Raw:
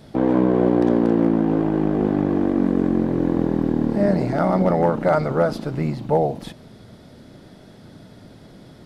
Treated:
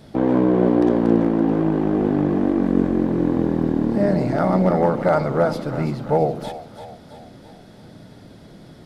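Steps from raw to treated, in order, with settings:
echo with a time of its own for lows and highs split 580 Hz, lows 86 ms, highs 334 ms, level −10.5 dB

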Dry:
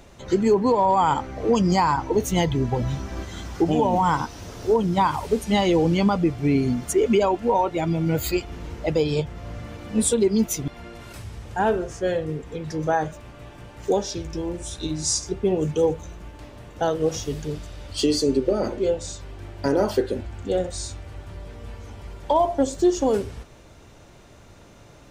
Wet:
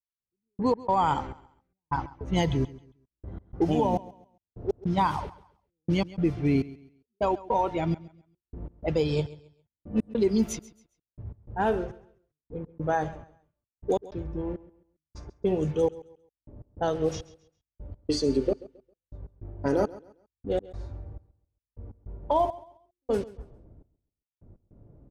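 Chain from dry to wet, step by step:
gate pattern "....x.xxx" 102 BPM −60 dB
low-pass that shuts in the quiet parts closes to 340 Hz, open at −17 dBFS
low-shelf EQ 150 Hz +3.5 dB
notch filter 7,400 Hz, Q 11
on a send: repeating echo 135 ms, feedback 30%, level −19 dB
on the sum: level −4.5 dB

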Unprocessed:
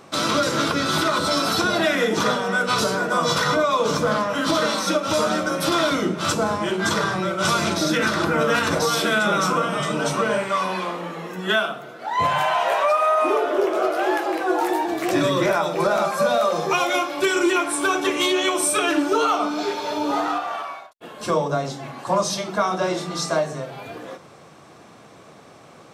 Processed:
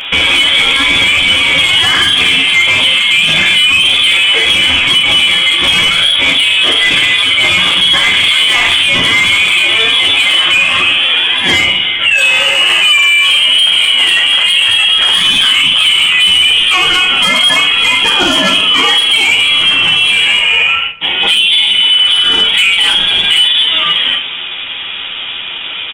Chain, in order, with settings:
healed spectral selection 0:21.57–0:22.37, 520–2,500 Hz both
voice inversion scrambler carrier 3,600 Hz
in parallel at +1 dB: downward compressor 6 to 1, threshold −32 dBFS, peak gain reduction 15.5 dB
on the sum: soft clipping −15.5 dBFS, distortion −15 dB
low-shelf EQ 160 Hz −7.5 dB
ambience of single reflections 11 ms −3.5 dB, 49 ms −7.5 dB
on a send at −18.5 dB: convolution reverb RT60 1.7 s, pre-delay 3 ms
on the sum: boost into a limiter +18 dB
level −1 dB

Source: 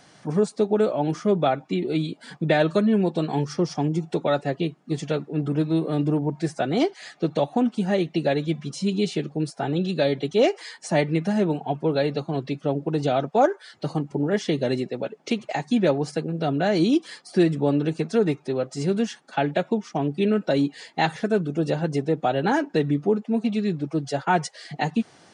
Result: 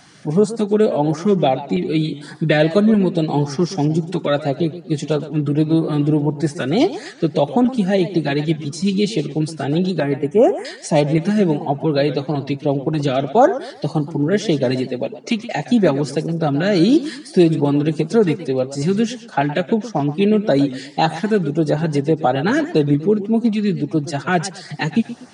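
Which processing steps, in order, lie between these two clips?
0:10.00–0:10.65: Butterworth band-reject 4,100 Hz, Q 0.7
auto-filter notch saw up 1.7 Hz 440–3,400 Hz
feedback echo with a swinging delay time 120 ms, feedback 34%, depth 153 cents, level −14 dB
level +6.5 dB

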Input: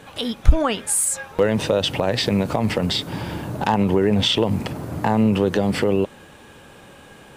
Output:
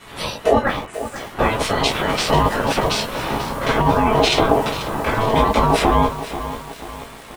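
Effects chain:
0:00.59–0:01.16: low-pass filter 1,700 Hz 12 dB per octave
double-tracking delay 15 ms −5 dB
convolution reverb, pre-delay 3 ms, DRR −7 dB
gate on every frequency bin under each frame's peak −10 dB weak
compressor whose output falls as the input rises −12 dBFS, ratio −0.5
low-shelf EQ 350 Hz +6 dB
ring modulation 550 Hz
feedback echo at a low word length 487 ms, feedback 55%, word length 5 bits, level −11.5 dB
level −1.5 dB

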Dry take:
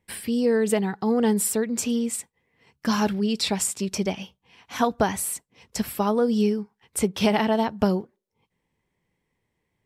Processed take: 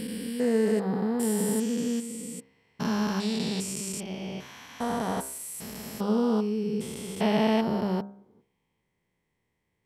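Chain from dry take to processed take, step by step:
spectrum averaged block by block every 400 ms
hum removal 66.38 Hz, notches 26

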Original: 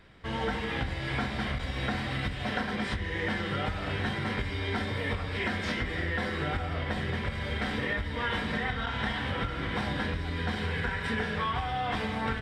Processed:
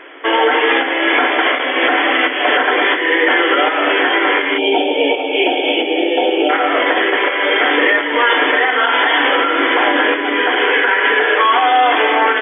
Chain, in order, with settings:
linear-phase brick-wall band-pass 270–3,500 Hz
gain on a spectral selection 0:04.58–0:06.50, 930–2,200 Hz −25 dB
boost into a limiter +25.5 dB
level −3 dB

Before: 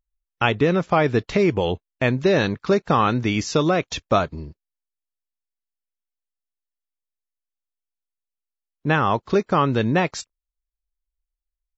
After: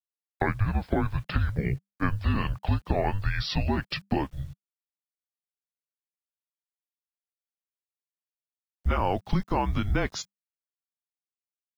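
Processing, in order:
pitch glide at a constant tempo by −6 semitones ending unshifted
downward compressor 5 to 1, threshold −22 dBFS, peak gain reduction 8.5 dB
bit reduction 10 bits
frequency shifter −200 Hz

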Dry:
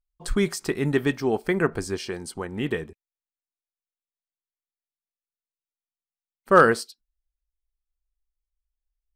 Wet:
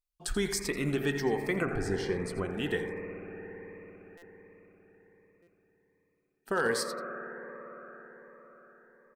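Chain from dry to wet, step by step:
0:01.65–0:02.45: spectral tilt −3 dB per octave
single-tap delay 85 ms −14 dB
brickwall limiter −15 dBFS, peak gain reduction 10 dB
low-shelf EQ 370 Hz −9 dB
on a send at −3.5 dB: Chebyshev low-pass with heavy ripple 2,500 Hz, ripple 3 dB + convolution reverb RT60 5.3 s, pre-delay 56 ms
on the sum: buffer that repeats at 0:04.17/0:05.42, samples 256, times 8
phaser whose notches keep moving one way rising 1.3 Hz

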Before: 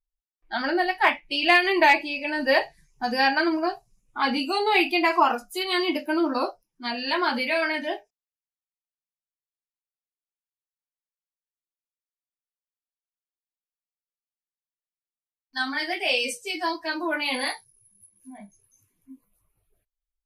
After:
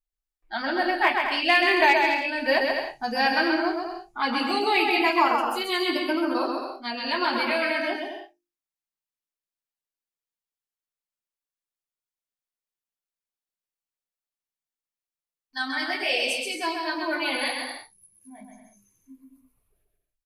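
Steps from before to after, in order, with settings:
mains-hum notches 50/100/150/200/250/300/350 Hz
bouncing-ball delay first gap 130 ms, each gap 0.65×, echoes 5
level −2 dB

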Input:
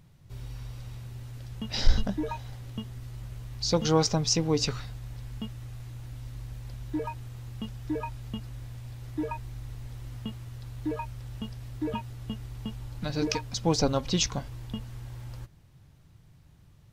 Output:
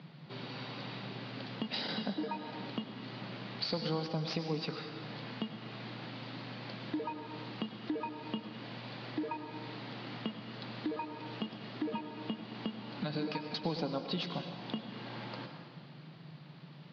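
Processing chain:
variable-slope delta modulation 64 kbit/s
Chebyshev band-pass filter 150–4,600 Hz, order 5
downward compressor 4 to 1, threshold −48 dBFS, peak gain reduction 24 dB
on a send: convolution reverb RT60 1.7 s, pre-delay 88 ms, DRR 6 dB
on the sum: level +10.5 dB

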